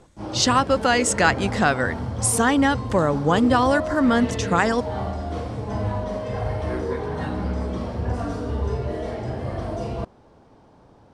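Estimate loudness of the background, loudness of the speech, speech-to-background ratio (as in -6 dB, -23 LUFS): -28.5 LUFS, -20.5 LUFS, 8.0 dB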